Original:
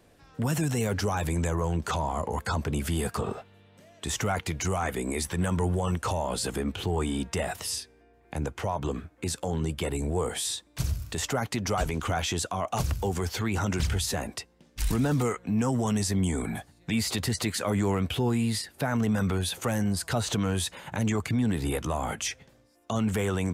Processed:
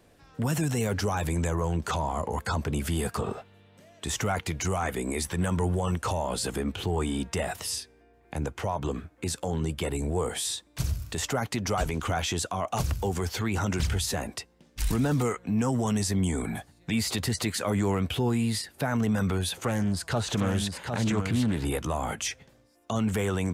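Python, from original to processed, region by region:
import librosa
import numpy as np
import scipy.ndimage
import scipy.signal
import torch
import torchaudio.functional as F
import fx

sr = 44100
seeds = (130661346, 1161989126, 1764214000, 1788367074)

y = fx.chain(x, sr, fx.high_shelf(hz=9700.0, db=-7.0),
    fx.echo_single(ms=757, db=-6.0),
    fx.doppler_dist(depth_ms=0.25), at=(19.52, 21.65))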